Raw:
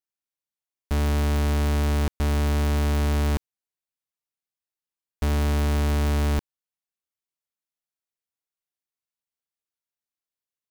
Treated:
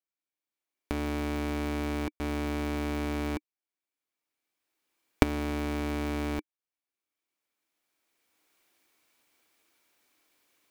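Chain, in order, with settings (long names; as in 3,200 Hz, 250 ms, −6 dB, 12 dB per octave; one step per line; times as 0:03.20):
camcorder AGC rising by 14 dB per second
bass and treble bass −9 dB, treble −5 dB
hollow resonant body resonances 300/2,300 Hz, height 10 dB, ringing for 35 ms
level −5.5 dB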